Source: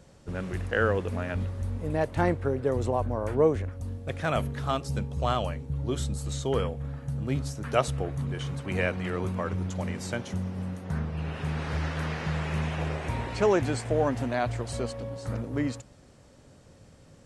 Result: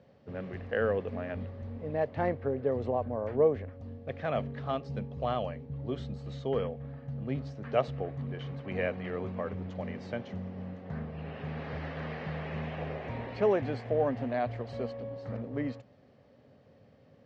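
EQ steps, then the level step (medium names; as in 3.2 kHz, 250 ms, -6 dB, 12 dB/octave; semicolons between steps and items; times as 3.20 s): cabinet simulation 150–4200 Hz, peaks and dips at 170 Hz -6 dB, 330 Hz -9 dB, 950 Hz -7 dB, 1.4 kHz -8 dB, 2.5 kHz -3 dB, 3.6 kHz -4 dB; treble shelf 2.7 kHz -9.5 dB; 0.0 dB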